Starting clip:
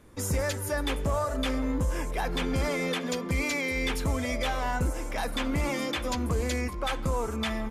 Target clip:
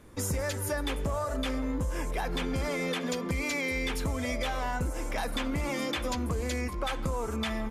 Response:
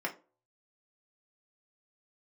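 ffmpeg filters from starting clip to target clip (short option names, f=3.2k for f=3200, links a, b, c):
-af "acompressor=threshold=-29dB:ratio=6,volume=1.5dB"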